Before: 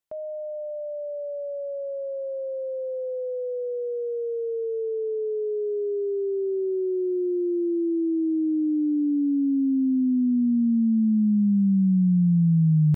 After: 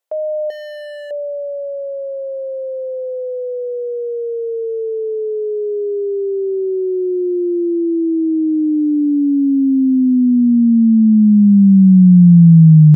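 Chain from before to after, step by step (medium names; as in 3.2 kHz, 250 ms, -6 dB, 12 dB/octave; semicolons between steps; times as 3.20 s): high-pass sweep 530 Hz -> 160 Hz, 0.64–2.17 s; 0.50–1.11 s: overload inside the chain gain 35 dB; trim +6 dB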